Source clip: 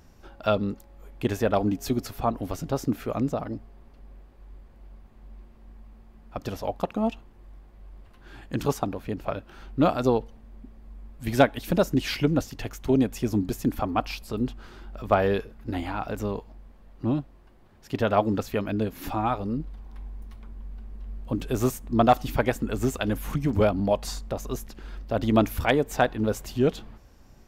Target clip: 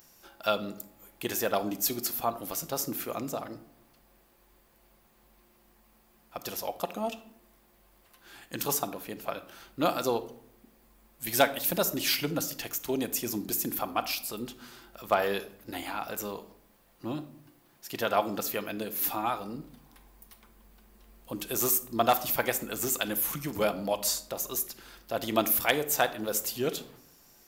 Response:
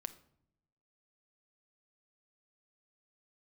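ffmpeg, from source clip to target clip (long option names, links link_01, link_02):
-filter_complex "[0:a]aemphasis=mode=production:type=riaa[link_01];[1:a]atrim=start_sample=2205[link_02];[link_01][link_02]afir=irnorm=-1:irlink=0"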